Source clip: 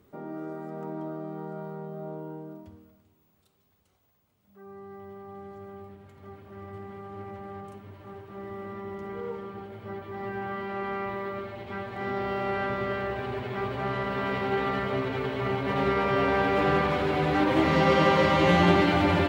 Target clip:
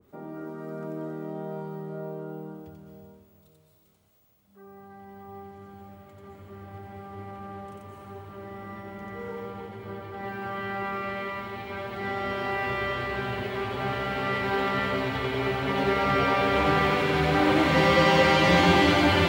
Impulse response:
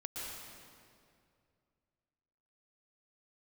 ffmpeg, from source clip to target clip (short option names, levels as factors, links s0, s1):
-filter_complex "[0:a]asplit=2[s0][s1];[1:a]atrim=start_sample=2205,highshelf=f=3900:g=10.5,adelay=90[s2];[s1][s2]afir=irnorm=-1:irlink=0,volume=0.708[s3];[s0][s3]amix=inputs=2:normalize=0,adynamicequalizer=threshold=0.0126:dfrequency=1500:dqfactor=0.7:tfrequency=1500:tqfactor=0.7:attack=5:release=100:ratio=0.375:range=1.5:mode=boostabove:tftype=highshelf,volume=0.891"